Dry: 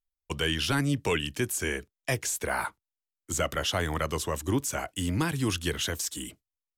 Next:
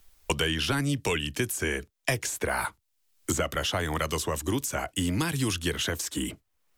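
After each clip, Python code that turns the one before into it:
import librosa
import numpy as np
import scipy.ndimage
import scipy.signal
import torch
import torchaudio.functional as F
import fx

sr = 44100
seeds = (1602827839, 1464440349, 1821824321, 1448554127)

y = fx.band_squash(x, sr, depth_pct=100)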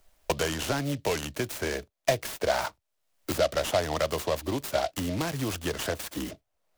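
y = fx.peak_eq(x, sr, hz=630.0, db=13.5, octaves=0.7)
y = fx.noise_mod_delay(y, sr, seeds[0], noise_hz=3300.0, depth_ms=0.055)
y = F.gain(torch.from_numpy(y), -4.0).numpy()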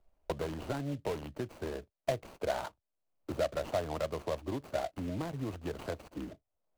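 y = scipy.signal.medfilt(x, 25)
y = F.gain(torch.from_numpy(y), -6.0).numpy()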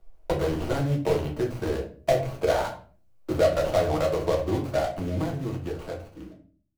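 y = fx.fade_out_tail(x, sr, length_s=2.21)
y = fx.room_shoebox(y, sr, seeds[1], volume_m3=34.0, walls='mixed', distance_m=0.63)
y = F.gain(torch.from_numpy(y), 6.0).numpy()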